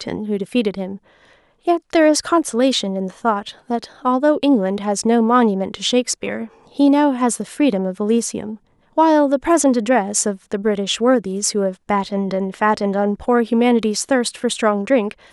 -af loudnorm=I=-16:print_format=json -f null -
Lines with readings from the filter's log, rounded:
"input_i" : "-18.0",
"input_tp" : "-2.1",
"input_lra" : "2.0",
"input_thresh" : "-28.3",